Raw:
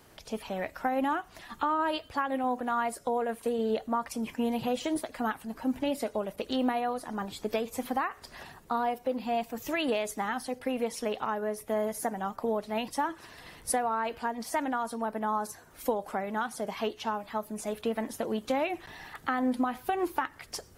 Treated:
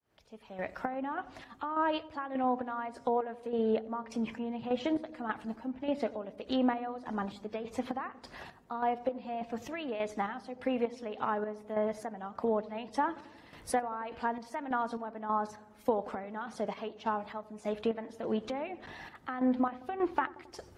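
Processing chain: opening faded in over 0.81 s; HPF 41 Hz; bell 11000 Hz -9.5 dB 1.7 oct; treble ducked by the level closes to 2900 Hz, closed at -25 dBFS; chopper 1.7 Hz, depth 60%, duty 45%; darkening echo 90 ms, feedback 77%, low-pass 900 Hz, level -17 dB

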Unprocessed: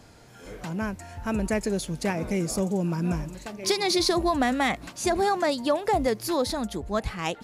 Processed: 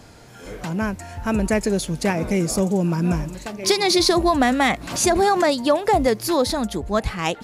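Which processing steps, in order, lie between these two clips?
4.71–5.58 backwards sustainer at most 84 dB/s; gain +6 dB

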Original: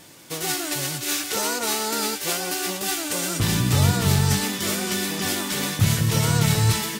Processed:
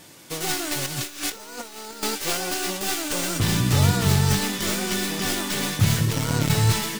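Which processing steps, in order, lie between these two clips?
tracing distortion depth 0.058 ms; 0.86–2.03 negative-ratio compressor -32 dBFS, ratio -0.5; 6.05–6.5 core saturation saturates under 300 Hz

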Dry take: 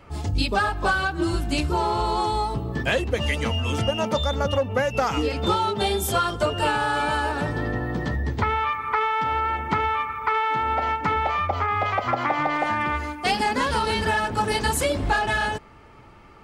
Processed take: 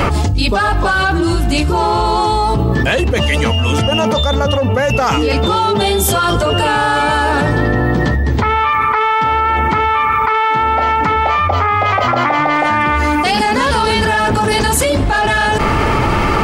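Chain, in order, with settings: fast leveller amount 100%; gain +4.5 dB

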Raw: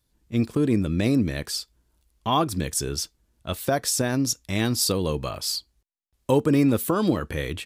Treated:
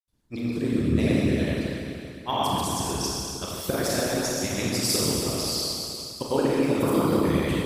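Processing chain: grains, pitch spread up and down by 0 st; Schroeder reverb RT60 2.9 s, combs from 26 ms, DRR -7.5 dB; harmonic-percussive split harmonic -16 dB

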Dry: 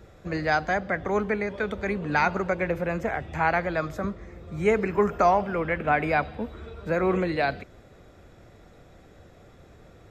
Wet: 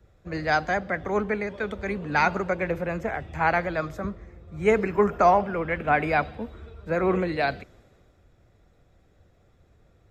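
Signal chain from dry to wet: vibrato 15 Hz 28 cents; three-band expander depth 40%

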